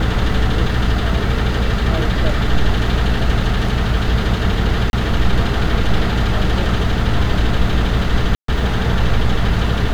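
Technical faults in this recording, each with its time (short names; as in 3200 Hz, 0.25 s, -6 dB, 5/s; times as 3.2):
hum 60 Hz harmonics 5 -20 dBFS
4.9–4.93 gap 31 ms
8.35–8.48 gap 0.133 s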